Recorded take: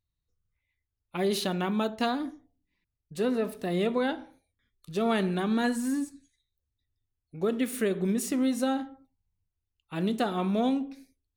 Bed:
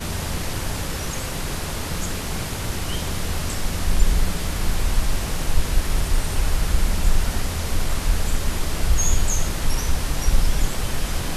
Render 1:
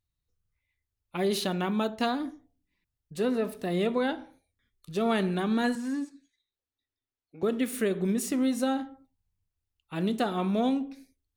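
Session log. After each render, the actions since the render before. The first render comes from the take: 5.75–7.43 three-band isolator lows -19 dB, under 210 Hz, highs -16 dB, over 5800 Hz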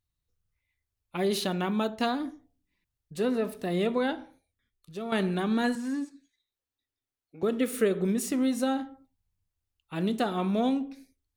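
4.21–5.12 fade out, to -10.5 dB; 7.6–8.09 small resonant body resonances 480/1300 Hz, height 10 dB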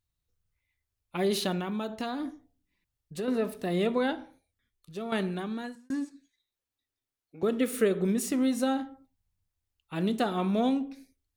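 1.59–3.28 compressor, threshold -29 dBFS; 4.97–5.9 fade out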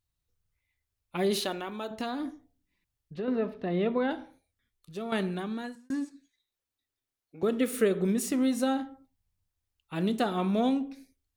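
1.41–1.91 bell 170 Hz -13.5 dB 0.8 oct; 3.14–4.11 air absorption 280 m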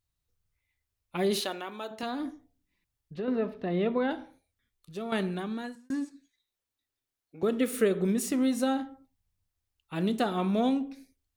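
1.41–2.03 HPF 360 Hz 6 dB/oct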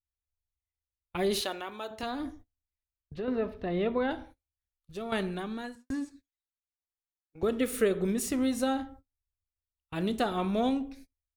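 gate -49 dBFS, range -26 dB; resonant low shelf 110 Hz +14 dB, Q 1.5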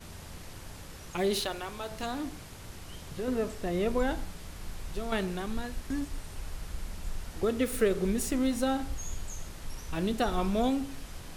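add bed -18.5 dB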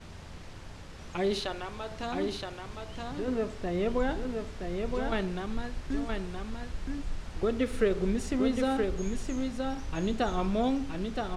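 air absorption 87 m; echo 0.971 s -4.5 dB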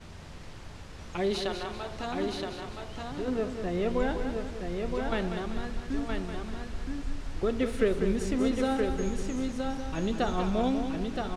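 feedback echo 0.194 s, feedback 41%, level -8 dB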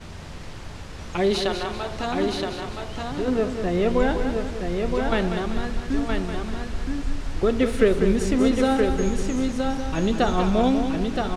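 gain +7.5 dB

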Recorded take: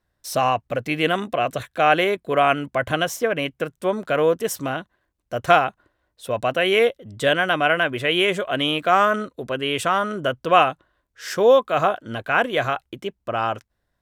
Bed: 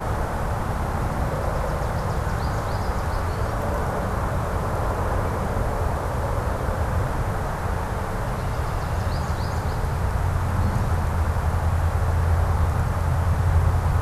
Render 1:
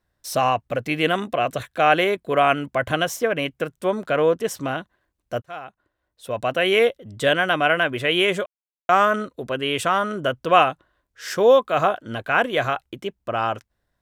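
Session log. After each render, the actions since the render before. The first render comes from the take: 4.09–4.69 high shelf 9000 Hz -9.5 dB; 5.42–6.65 fade in; 8.46–8.89 mute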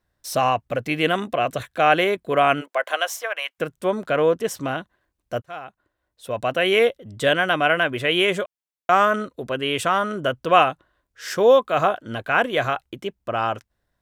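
2.6–3.58 HPF 410 Hz -> 880 Hz 24 dB/oct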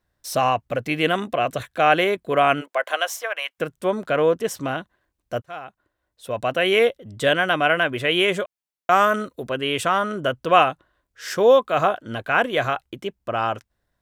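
8.91–9.48 high shelf 8600 Hz +10 dB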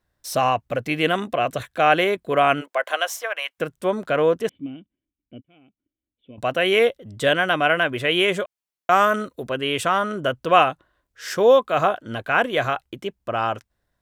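4.49–6.38 vocal tract filter i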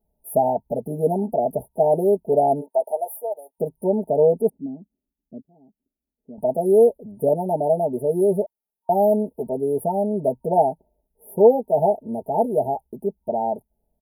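FFT band-reject 930–9600 Hz; comb 4.7 ms, depth 92%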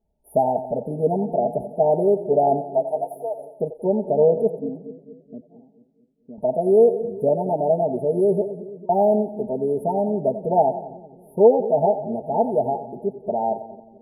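air absorption 74 m; on a send: split-band echo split 420 Hz, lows 0.22 s, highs 89 ms, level -11.5 dB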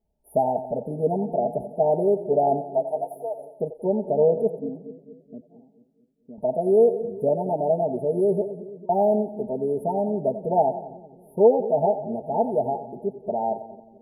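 gain -2.5 dB

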